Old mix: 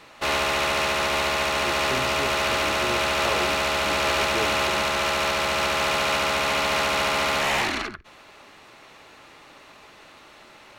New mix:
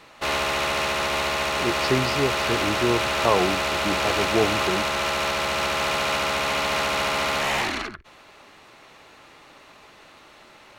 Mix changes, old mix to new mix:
speech +11.5 dB; reverb: off

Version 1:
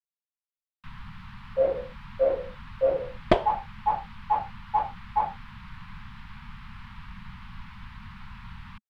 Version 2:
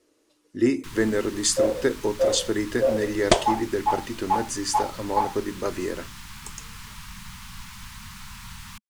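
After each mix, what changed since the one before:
speech: unmuted; master: remove air absorption 420 m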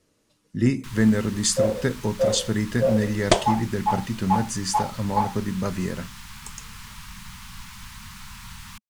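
speech: add resonant low shelf 240 Hz +9.5 dB, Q 3

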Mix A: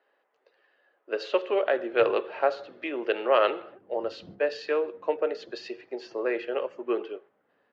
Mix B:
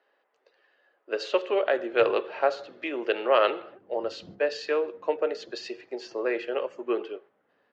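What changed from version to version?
master: remove air absorption 100 m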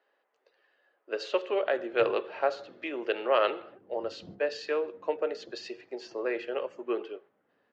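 speech -3.5 dB

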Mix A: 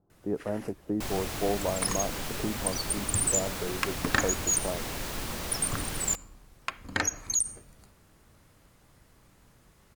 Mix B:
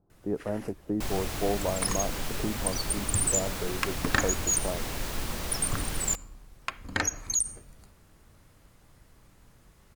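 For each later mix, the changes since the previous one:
master: add low shelf 60 Hz +7 dB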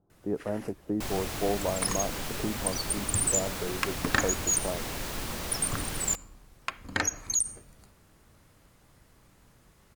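master: add low shelf 60 Hz -7 dB

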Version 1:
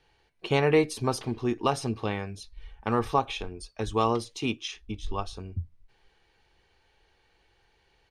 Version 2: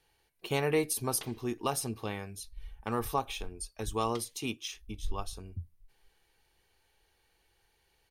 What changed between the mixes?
speech -7.0 dB; master: remove air absorption 110 m

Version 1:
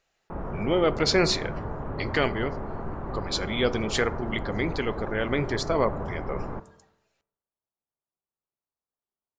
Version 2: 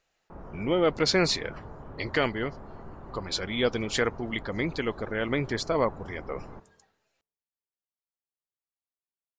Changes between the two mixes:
speech: send off; background -10.0 dB

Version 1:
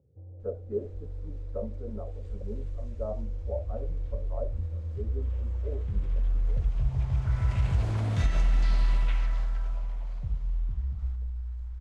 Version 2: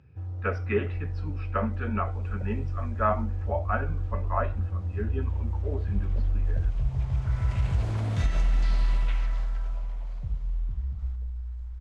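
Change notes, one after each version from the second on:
speech: remove ladder low-pass 580 Hz, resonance 65%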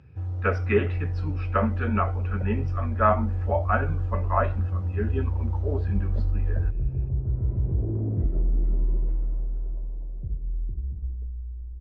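speech +4.5 dB; background: add synth low-pass 360 Hz, resonance Q 3.8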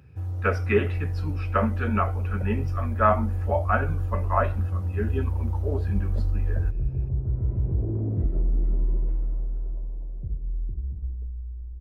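master: remove air absorption 110 m

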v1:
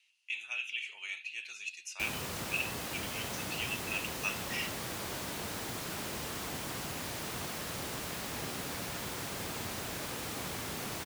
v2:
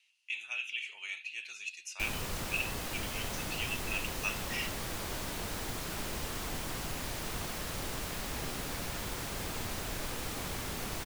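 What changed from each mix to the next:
background: remove HPF 95 Hz 12 dB/oct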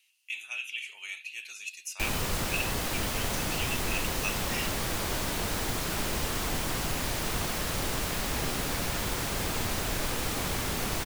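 speech: remove air absorption 72 m; background +7.0 dB

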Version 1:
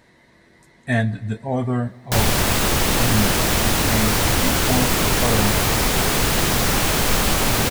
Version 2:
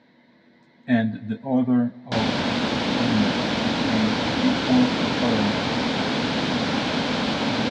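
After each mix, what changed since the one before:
master: add speaker cabinet 190–4100 Hz, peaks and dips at 250 Hz +8 dB, 380 Hz -8 dB, 730 Hz -3 dB, 1200 Hz -8 dB, 1900 Hz -6 dB, 2700 Hz -5 dB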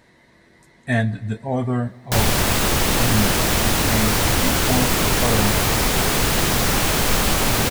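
master: remove speaker cabinet 190–4100 Hz, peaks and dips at 250 Hz +8 dB, 380 Hz -8 dB, 730 Hz -3 dB, 1200 Hz -8 dB, 1900 Hz -6 dB, 2700 Hz -5 dB

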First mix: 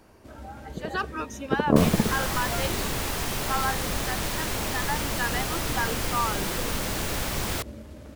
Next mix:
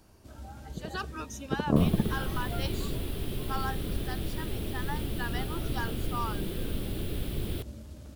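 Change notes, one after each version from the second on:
second sound: add EQ curve 160 Hz 0 dB, 400 Hz +6 dB, 890 Hz -13 dB, 3400 Hz -5 dB, 6500 Hz -27 dB, 10000 Hz -11 dB; master: add graphic EQ 250/500/1000/2000 Hz -4/-7/-5/-8 dB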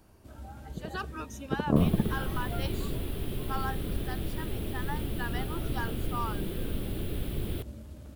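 master: add bell 5500 Hz -5.5 dB 1.3 oct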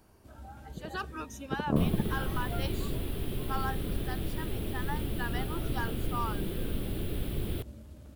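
first sound -3.5 dB

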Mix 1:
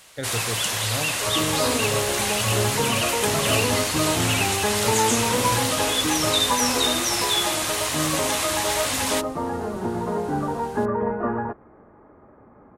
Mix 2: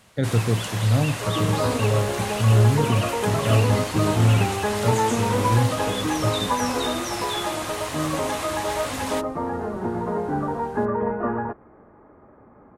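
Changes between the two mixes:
speech: add bell 170 Hz +14.5 dB 2.2 oct; first sound: add high shelf 2000 Hz -10.5 dB

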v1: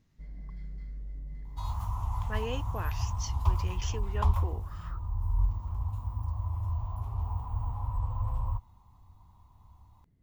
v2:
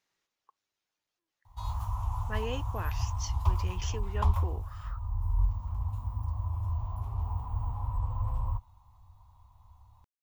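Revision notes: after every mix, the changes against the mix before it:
first sound: muted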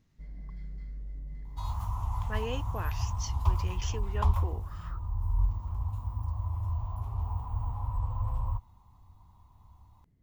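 first sound: unmuted

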